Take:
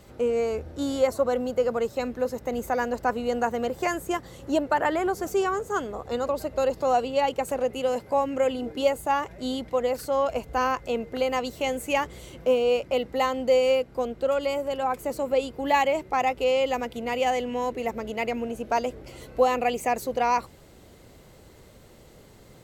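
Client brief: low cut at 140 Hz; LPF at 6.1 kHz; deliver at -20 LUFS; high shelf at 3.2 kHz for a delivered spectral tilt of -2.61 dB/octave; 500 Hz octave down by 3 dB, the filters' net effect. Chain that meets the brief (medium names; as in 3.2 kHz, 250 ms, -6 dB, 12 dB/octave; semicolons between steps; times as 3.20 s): high-pass 140 Hz; low-pass 6.1 kHz; peaking EQ 500 Hz -3 dB; treble shelf 3.2 kHz -7 dB; trim +8.5 dB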